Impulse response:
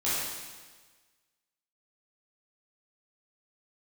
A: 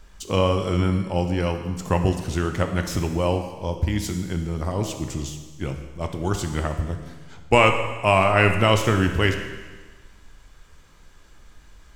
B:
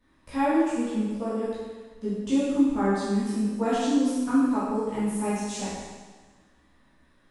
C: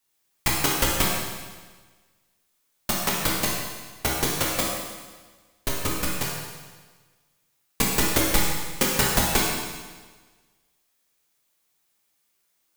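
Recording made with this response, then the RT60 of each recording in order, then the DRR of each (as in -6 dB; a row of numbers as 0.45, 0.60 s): B; 1.4, 1.4, 1.4 s; 5.0, -11.0, -4.5 dB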